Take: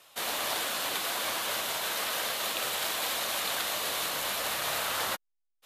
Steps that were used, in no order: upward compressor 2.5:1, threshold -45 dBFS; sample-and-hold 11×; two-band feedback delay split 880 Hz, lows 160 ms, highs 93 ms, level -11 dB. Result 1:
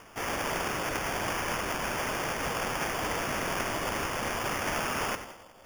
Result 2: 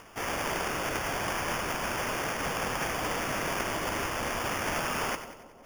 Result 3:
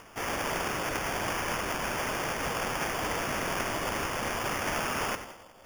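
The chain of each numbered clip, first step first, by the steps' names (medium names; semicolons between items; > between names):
two-band feedback delay > upward compressor > sample-and-hold; sample-and-hold > two-band feedback delay > upward compressor; two-band feedback delay > sample-and-hold > upward compressor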